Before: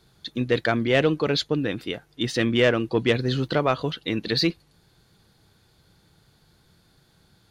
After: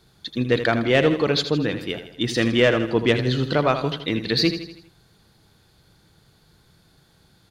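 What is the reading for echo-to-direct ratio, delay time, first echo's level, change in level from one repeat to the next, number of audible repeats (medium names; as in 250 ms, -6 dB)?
-9.0 dB, 80 ms, -10.0 dB, -6.0 dB, 5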